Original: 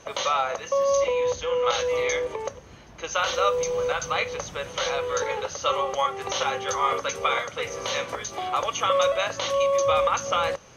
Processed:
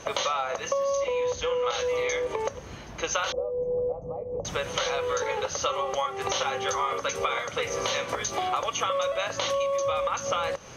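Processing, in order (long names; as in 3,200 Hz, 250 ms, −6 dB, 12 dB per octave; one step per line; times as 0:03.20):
downward compressor, threshold −31 dBFS, peak gain reduction 13.5 dB
0:03.32–0:04.45: inverse Chebyshev low-pass filter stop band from 1,400 Hz, stop band 40 dB
level +6 dB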